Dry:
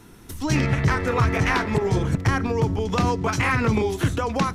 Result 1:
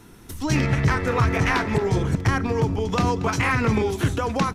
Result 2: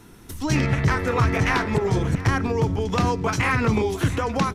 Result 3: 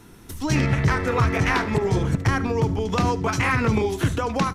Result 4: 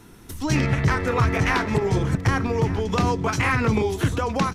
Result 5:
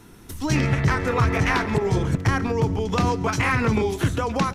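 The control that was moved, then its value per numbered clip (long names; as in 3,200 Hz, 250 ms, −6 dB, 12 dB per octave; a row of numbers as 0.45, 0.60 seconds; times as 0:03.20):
single-tap delay, delay time: 232, 694, 73, 1,188, 137 milliseconds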